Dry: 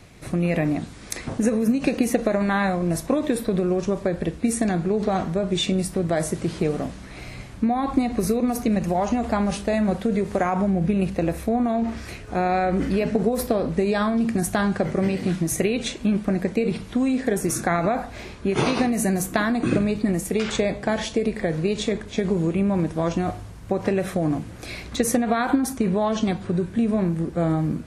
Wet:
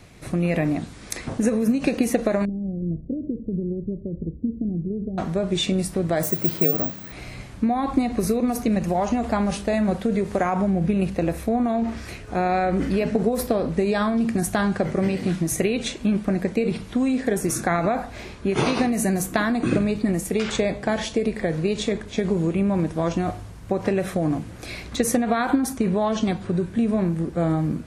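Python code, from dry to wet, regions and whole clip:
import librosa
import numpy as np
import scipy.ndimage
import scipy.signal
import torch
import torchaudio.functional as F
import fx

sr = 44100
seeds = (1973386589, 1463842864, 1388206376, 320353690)

y = fx.chain(x, sr, fx.gaussian_blur(sigma=25.0),
    fx.echo_single(ms=98, db=-24.0), at=(2.45, 5.18))
y = fx.chain(y, sr, fx.highpass(hz=95.0, slope=24),
    fx.resample_bad(factor=2, down='filtered', up='zero_stuff'), at=(6.23, 7.12))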